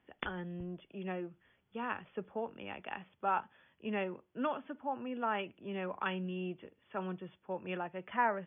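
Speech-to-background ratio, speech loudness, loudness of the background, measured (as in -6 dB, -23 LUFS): 10.5 dB, -39.5 LUFS, -50.0 LUFS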